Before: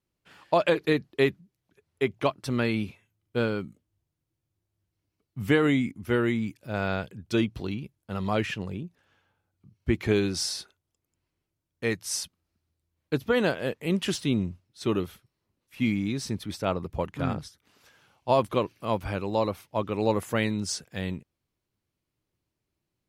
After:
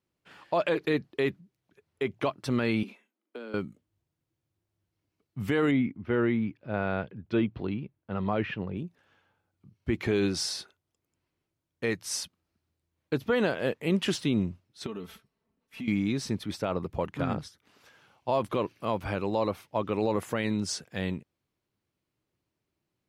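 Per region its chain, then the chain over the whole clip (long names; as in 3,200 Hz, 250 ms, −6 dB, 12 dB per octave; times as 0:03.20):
0:02.83–0:03.54: Butterworth high-pass 200 Hz 96 dB per octave + downward compressor 12 to 1, threshold −38 dBFS + one half of a high-frequency compander decoder only
0:05.71–0:08.77: high-pass filter 44 Hz + high-frequency loss of the air 330 metres
0:14.86–0:15.88: comb filter 4.5 ms, depth 66% + downward compressor, threshold −36 dBFS + one half of a high-frequency compander decoder only
whole clip: low-shelf EQ 69 Hz −11.5 dB; brickwall limiter −18 dBFS; high-shelf EQ 5,200 Hz −7 dB; level +2 dB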